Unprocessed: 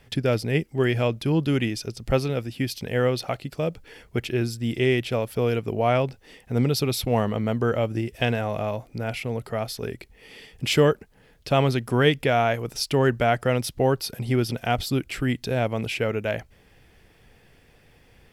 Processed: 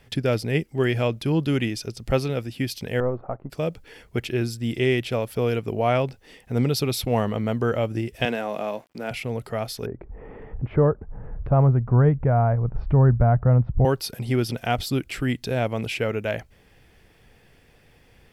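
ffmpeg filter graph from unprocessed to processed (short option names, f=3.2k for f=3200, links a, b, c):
-filter_complex "[0:a]asettb=1/sr,asplit=3[a][b][c];[a]atrim=end=3.004[d];[b]atrim=start=3:end=3.5,asetpts=PTS-STARTPTS,afade=t=in:d=0.004:c=qsin,afade=t=out:st=0.496:d=0.004:c=qsin,aeval=exprs='if(lt(val(0),0),0.447*val(0),val(0))':c=same,lowpass=f=1.2k:w=0.5412,lowpass=f=1.2k:w=1.3066[e];[c]atrim=start=3.496[f];[d][e]acrossfade=d=0.004:c1=hsin:c2=qsin[g];[g][f]acrossfade=d=0.004:c1=qsin:c2=hsin,asettb=1/sr,asplit=3[h][i][j];[h]atrim=end=8.254[k];[i]atrim=start=8.25:end=9.11,asetpts=PTS-STARTPTS,afade=t=in:d=0.004:c=qsin,afade=t=out:st=0.856:d=0.004:c=qsin,highpass=f=190:w=0.5412,highpass=f=190:w=1.3066,aeval=exprs='sgn(val(0))*max(abs(val(0))-0.002,0)':c=same[l];[j]atrim=start=9.106[m];[k][l]acrossfade=d=0.004:c1=hsin:c2=qsin[n];[n][m]acrossfade=d=0.004:c1=qsin:c2=hsin,asettb=1/sr,asplit=3[o][p][q];[o]atrim=end=9.864[r];[p]atrim=start=9.86:end=13.85,asetpts=PTS-STARTPTS,afade=t=in:d=0.004:c=qsin,afade=t=out:st=3.986:d=0.004:c=qsin,lowpass=f=1.2k:w=0.5412,lowpass=f=1.2k:w=1.3066,acompressor=mode=upward:threshold=-29dB:ratio=2.5:attack=3.2:release=140:knee=2.83:detection=peak,asubboost=boost=11.5:cutoff=110[s];[q]atrim=start=13.846[t];[r][s]acrossfade=d=0.004:c1=hsin:c2=qsin[u];[u][t]acrossfade=d=0.004:c1=qsin:c2=hsin"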